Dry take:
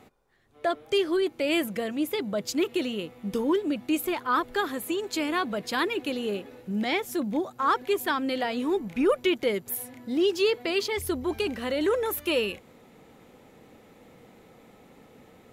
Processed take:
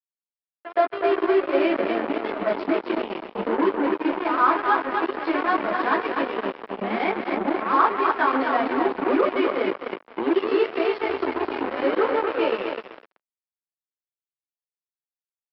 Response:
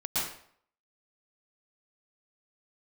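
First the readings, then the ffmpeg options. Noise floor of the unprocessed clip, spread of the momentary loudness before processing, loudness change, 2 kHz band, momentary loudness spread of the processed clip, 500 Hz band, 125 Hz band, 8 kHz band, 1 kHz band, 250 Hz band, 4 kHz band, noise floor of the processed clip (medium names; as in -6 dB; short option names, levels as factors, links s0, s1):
-55 dBFS, 6 LU, +4.0 dB, +4.5 dB, 8 LU, +4.0 dB, no reading, under -30 dB, +9.0 dB, +2.5 dB, -4.5 dB, under -85 dBFS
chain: -filter_complex "[0:a]lowpass=4100,aecho=1:1:253|506|759|1012|1265|1518:0.562|0.276|0.135|0.0662|0.0324|0.0159,asplit=2[s0][s1];[s1]asoftclip=type=tanh:threshold=0.0335,volume=0.335[s2];[s0][s2]amix=inputs=2:normalize=0[s3];[1:a]atrim=start_sample=2205,atrim=end_sample=6615[s4];[s3][s4]afir=irnorm=-1:irlink=0,aeval=exprs='0.316*(cos(1*acos(clip(val(0)/0.316,-1,1)))-cos(1*PI/2))+0.0501*(cos(7*acos(clip(val(0)/0.316,-1,1)))-cos(7*PI/2))':c=same,aresample=11025,aeval=exprs='sgn(val(0))*max(abs(val(0))-0.01,0)':c=same,aresample=44100,acrossover=split=290 2100:gain=0.1 1 0.1[s5][s6][s7];[s5][s6][s7]amix=inputs=3:normalize=0"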